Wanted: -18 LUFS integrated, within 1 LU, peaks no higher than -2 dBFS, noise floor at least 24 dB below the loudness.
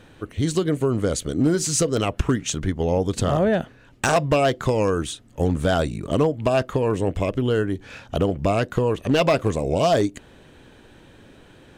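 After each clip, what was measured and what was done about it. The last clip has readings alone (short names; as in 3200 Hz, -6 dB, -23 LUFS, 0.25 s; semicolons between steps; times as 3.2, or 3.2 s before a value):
clipped 0.4%; flat tops at -11.5 dBFS; dropouts 1; longest dropout 1.4 ms; loudness -22.5 LUFS; peak -11.5 dBFS; loudness target -18.0 LUFS
-> clip repair -11.5 dBFS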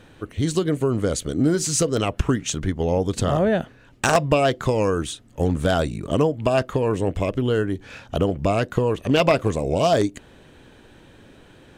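clipped 0.0%; dropouts 1; longest dropout 1.4 ms
-> interpolate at 1.97, 1.4 ms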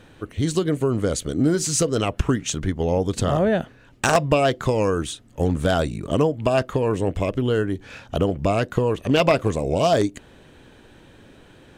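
dropouts 0; loudness -22.0 LUFS; peak -2.5 dBFS; loudness target -18.0 LUFS
-> gain +4 dB; limiter -2 dBFS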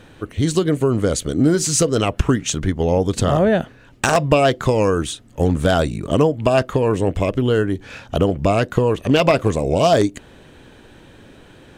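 loudness -18.5 LUFS; peak -2.0 dBFS; noise floor -46 dBFS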